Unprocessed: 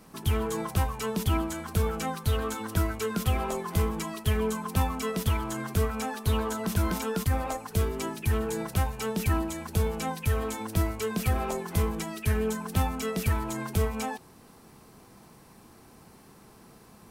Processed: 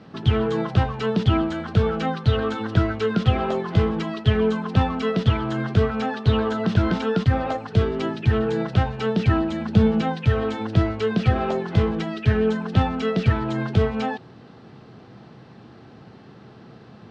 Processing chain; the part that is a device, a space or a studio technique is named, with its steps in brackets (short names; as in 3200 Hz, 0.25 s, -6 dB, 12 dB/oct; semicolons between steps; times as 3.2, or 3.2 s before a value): 9.52–10.01 bell 210 Hz +13.5 dB 0.28 oct; guitar cabinet (speaker cabinet 97–3900 Hz, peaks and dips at 120 Hz +8 dB, 1000 Hz -8 dB, 2300 Hz -6 dB); gain +8.5 dB